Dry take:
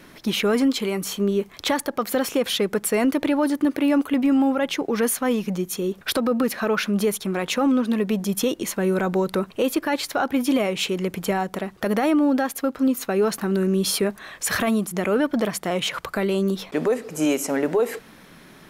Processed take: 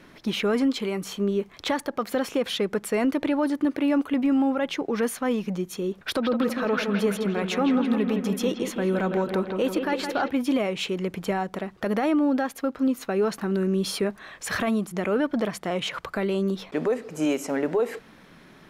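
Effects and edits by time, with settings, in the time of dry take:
6.04–10.3 analogue delay 0.164 s, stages 4096, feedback 64%, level -6.5 dB
whole clip: high shelf 7700 Hz -12 dB; gain -3 dB

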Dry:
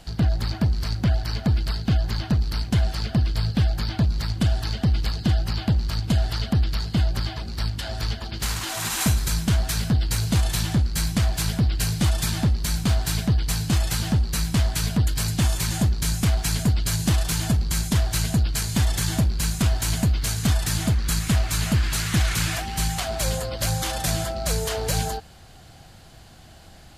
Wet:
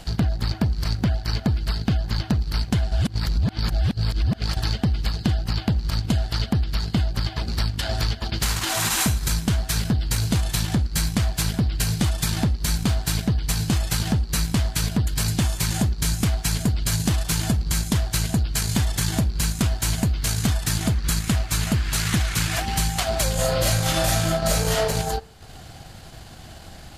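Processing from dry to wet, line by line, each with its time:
2.91–4.57 reverse
23.34–24.83 reverb throw, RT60 0.83 s, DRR -9 dB
whole clip: transient shaper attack -1 dB, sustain -8 dB; compressor, threshold -25 dBFS; gain +6.5 dB

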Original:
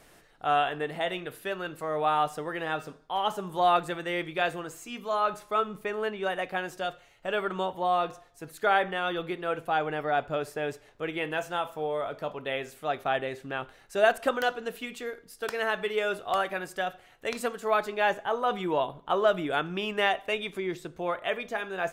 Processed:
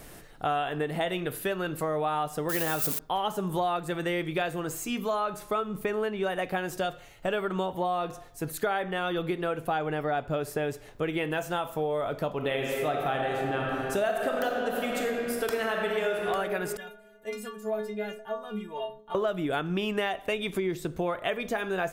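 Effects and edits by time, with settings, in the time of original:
2.49–2.99 switching spikes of -28.5 dBFS
12.35–16.25 reverb throw, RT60 2.3 s, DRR 0 dB
16.77–19.15 metallic resonator 210 Hz, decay 0.41 s, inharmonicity 0.008
whole clip: low shelf 360 Hz +8.5 dB; compressor 6:1, threshold -31 dBFS; high shelf 10000 Hz +11.5 dB; gain +5 dB

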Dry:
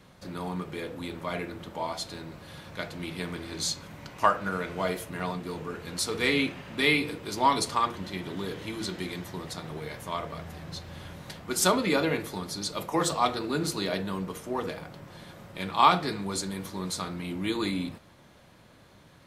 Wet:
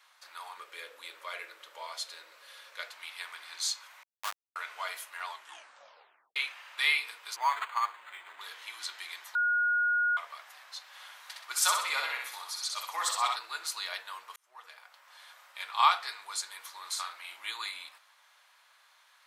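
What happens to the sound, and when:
0.57–2.9 resonant low shelf 630 Hz +6 dB, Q 3
4.03–4.56 Schmitt trigger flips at -19 dBFS
5.26 tape stop 1.10 s
7.36–8.41 decimation joined by straight lines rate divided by 8×
9.35–10.17 bleep 1440 Hz -22.5 dBFS
10.86–13.36 feedback echo 63 ms, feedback 45%, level -4 dB
14.36–15.23 fade in
16.8–17.51 doubler 44 ms -5 dB
whole clip: HPF 960 Hz 24 dB/oct; gain -1.5 dB

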